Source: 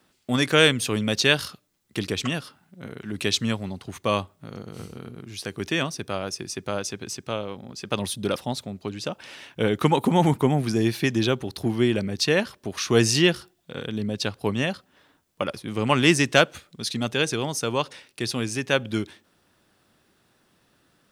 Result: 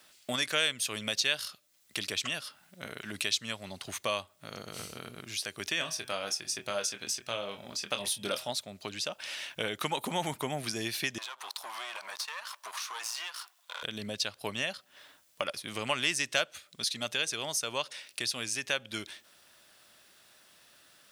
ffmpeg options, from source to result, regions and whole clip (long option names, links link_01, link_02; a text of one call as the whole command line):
ffmpeg -i in.wav -filter_complex "[0:a]asettb=1/sr,asplit=3[link_01][link_02][link_03];[link_01]atrim=end=5.774[link_04];[link_02]atrim=start=5.77:end=8.5,asetpts=PTS-STARTPTS,afade=type=in:duration=0.004:curve=qsin,afade=type=out:start_time=2.726:duration=0.004:curve=qsin,bandreject=frequency=126.1:width_type=h:width=4,bandreject=frequency=252.2:width_type=h:width=4,bandreject=frequency=378.3:width_type=h:width=4,bandreject=frequency=504.4:width_type=h:width=4,bandreject=frequency=630.5:width_type=h:width=4,bandreject=frequency=756.6:width_type=h:width=4,bandreject=frequency=882.7:width_type=h:width=4,bandreject=frequency=1008.8:width_type=h:width=4,bandreject=frequency=1134.9:width_type=h:width=4,bandreject=frequency=1261:width_type=h:width=4,bandreject=frequency=1387.1:width_type=h:width=4,bandreject=frequency=1513.2:width_type=h:width=4,bandreject=frequency=1639.3:width_type=h:width=4,bandreject=frequency=1765.4:width_type=h:width=4,bandreject=frequency=1891.5:width_type=h:width=4,bandreject=frequency=2017.6:width_type=h:width=4,bandreject=frequency=2143.7:width_type=h:width=4,bandreject=frequency=2269.8:width_type=h:width=4,bandreject=frequency=2395.9:width_type=h:width=4,bandreject=frequency=2522:width_type=h:width=4,bandreject=frequency=2648.1:width_type=h:width=4,bandreject=frequency=2774.2:width_type=h:width=4,bandreject=frequency=2900.3:width_type=h:width=4,bandreject=frequency=3026.4:width_type=h:width=4,bandreject=frequency=3152.5:width_type=h:width=4,bandreject=frequency=3278.6:width_type=h:width=4,bandreject=frequency=3404.7:width_type=h:width=4,aphaser=in_gain=1:out_gain=1:delay=4.2:decay=0.23:speed=1.2:type=sinusoidal,asplit=2[link_05][link_06];[link_06]adelay=25,volume=-8dB[link_07];[link_05][link_07]amix=inputs=2:normalize=0,atrim=end_sample=120393[link_08];[link_03]atrim=start=8.496[link_09];[link_04][link_08]acrossfade=duration=0.004:curve1=hsin:curve2=qsin[link_10];[link_10][link_09]acrossfade=duration=0.004:curve1=qsin:curve2=hsin,asettb=1/sr,asplit=3[link_11][link_12][link_13];[link_11]atrim=end=11.184[link_14];[link_12]atrim=start=11.18:end=13.83,asetpts=PTS-STARTPTS,afade=type=in:duration=0.004:curve=qsin,afade=type=out:start_time=2.646:duration=0.004:curve=qsin,aeval=exprs='if(lt(val(0),0),0.251*val(0),val(0))':channel_layout=same,highpass=frequency=1000:width_type=q:width=3.9,acompressor=threshold=-37dB:ratio=5:attack=3.2:release=140:knee=1:detection=peak[link_15];[link_13]atrim=start=13.826[link_16];[link_14][link_15]acrossfade=duration=0.004:curve1=hsin:curve2=qsin[link_17];[link_17][link_16]acrossfade=duration=0.004:curve1=qsin:curve2=hsin,tiltshelf=frequency=970:gain=-9.5,acompressor=threshold=-38dB:ratio=2,equalizer=frequency=610:width_type=o:width=0.34:gain=8" out.wav